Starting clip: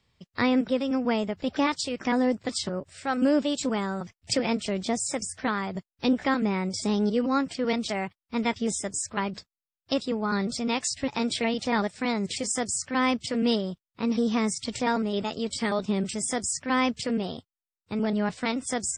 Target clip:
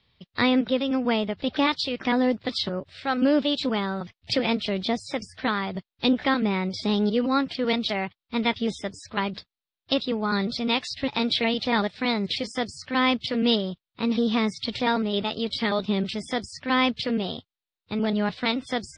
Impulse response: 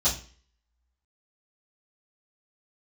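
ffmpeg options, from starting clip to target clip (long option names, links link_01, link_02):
-af "highshelf=frequency=5500:width_type=q:width=3:gain=-12.5,volume=1.5dB"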